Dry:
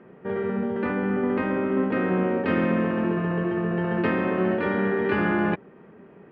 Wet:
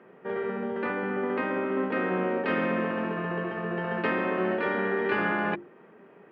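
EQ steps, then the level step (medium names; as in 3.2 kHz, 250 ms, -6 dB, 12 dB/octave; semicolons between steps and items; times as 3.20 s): high-pass 98 Hz; bass shelf 240 Hz -12 dB; hum notches 50/100/150/200/250/300/350 Hz; 0.0 dB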